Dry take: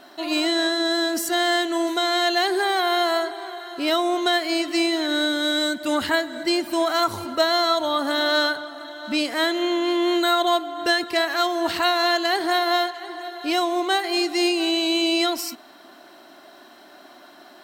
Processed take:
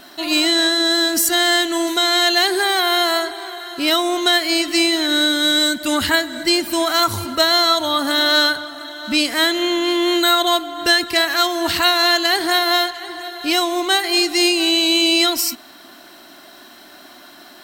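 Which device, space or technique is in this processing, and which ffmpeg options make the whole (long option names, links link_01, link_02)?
smiley-face EQ: -af "lowshelf=frequency=93:gain=8.5,equalizer=frequency=570:width_type=o:width=2.4:gain=-7.5,highshelf=frequency=7700:gain=5.5,volume=8dB"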